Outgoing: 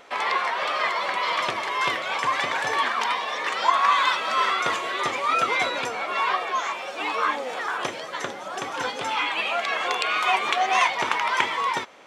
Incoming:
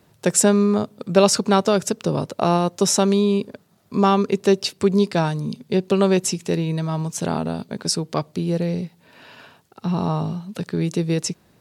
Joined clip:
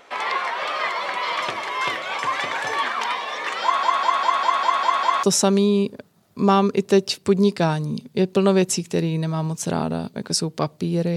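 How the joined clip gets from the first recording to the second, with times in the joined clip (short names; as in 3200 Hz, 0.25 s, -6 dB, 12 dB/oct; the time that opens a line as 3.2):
outgoing
3.63 stutter in place 0.20 s, 8 plays
5.23 switch to incoming from 2.78 s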